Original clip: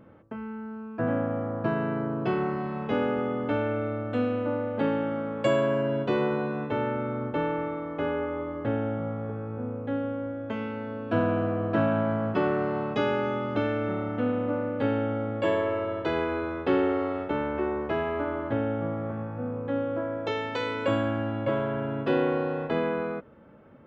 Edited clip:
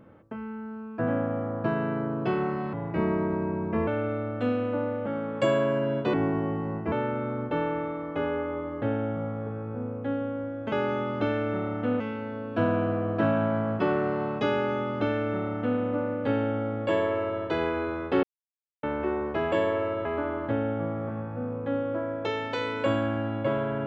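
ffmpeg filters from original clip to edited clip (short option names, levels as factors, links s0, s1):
-filter_complex "[0:a]asplit=12[s0][s1][s2][s3][s4][s5][s6][s7][s8][s9][s10][s11];[s0]atrim=end=2.734[s12];[s1]atrim=start=2.73:end=3.6,asetpts=PTS-STARTPTS,asetrate=33516,aresample=44100[s13];[s2]atrim=start=3.596:end=4.792[s14];[s3]atrim=start=5.088:end=6.164[s15];[s4]atrim=start=6.16:end=6.75,asetpts=PTS-STARTPTS,asetrate=33075,aresample=44100[s16];[s5]atrim=start=6.746:end=10.552[s17];[s6]atrim=start=13.068:end=14.352[s18];[s7]atrim=start=10.548:end=16.78,asetpts=PTS-STARTPTS,afade=t=out:st=6.228:d=0.004:c=hsin[s19];[s8]atrim=start=16.78:end=17.38,asetpts=PTS-STARTPTS,volume=0[s20];[s9]atrim=start=17.38:end=18.072,asetpts=PTS-STARTPTS,afade=t=in:d=0.004:c=hsin[s21];[s10]atrim=start=15.428:end=15.962[s22];[s11]atrim=start=18.068[s23];[s12][s13]acrossfade=d=0.004:c1=hsin:c2=hsin[s24];[s24][s14]acrossfade=d=0.004:c1=hsin:c2=hsin[s25];[s25][s15]acrossfade=d=0.004:c1=hsin:c2=hsin[s26];[s26][s16]acrossfade=d=0.004:c1=hsin:c2=hsin[s27];[s27][s17]acrossfade=d=0.004:c1=hsin:c2=hsin[s28];[s28][s18]acrossfade=d=0.004:c1=hsin:c2=hsin[s29];[s19][s20][s21]concat=n=3:v=0:a=1[s30];[s29][s30]acrossfade=d=0.004:c1=hsin:c2=hsin[s31];[s31][s22]acrossfade=d=0.004:c1=hsin:c2=hsin[s32];[s32][s23]acrossfade=d=0.004:c1=hsin:c2=hsin"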